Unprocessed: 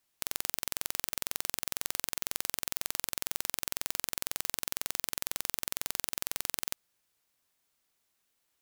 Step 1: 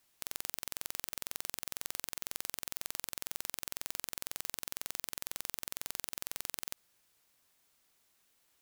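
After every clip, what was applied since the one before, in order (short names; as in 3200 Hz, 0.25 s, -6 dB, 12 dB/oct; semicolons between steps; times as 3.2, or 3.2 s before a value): limiter -14.5 dBFS, peak gain reduction 10.5 dB; gain +5 dB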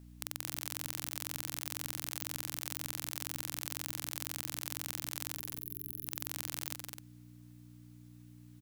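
spectral gain 5.36–6.05, 430–11000 Hz -19 dB; buzz 60 Hz, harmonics 5, -54 dBFS -4 dB/oct; loudspeakers at several distances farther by 71 m -7 dB, 89 m -9 dB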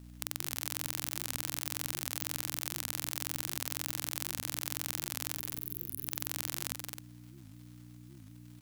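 crackle 180/s -52 dBFS; record warp 78 rpm, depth 250 cents; gain +3 dB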